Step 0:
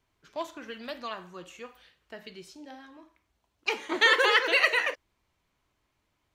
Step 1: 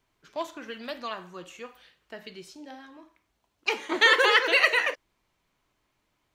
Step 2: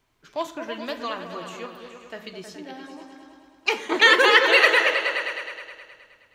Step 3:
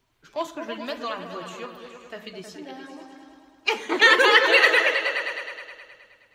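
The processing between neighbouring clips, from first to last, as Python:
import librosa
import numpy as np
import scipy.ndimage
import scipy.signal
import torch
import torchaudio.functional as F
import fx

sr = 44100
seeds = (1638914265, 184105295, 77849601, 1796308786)

y1 = fx.peak_eq(x, sr, hz=71.0, db=-8.5, octaves=0.8)
y1 = F.gain(torch.from_numpy(y1), 2.0).numpy()
y2 = fx.echo_opening(y1, sr, ms=105, hz=200, octaves=2, feedback_pct=70, wet_db=-3)
y2 = F.gain(torch.from_numpy(y2), 4.0).numpy()
y3 = fx.spec_quant(y2, sr, step_db=15)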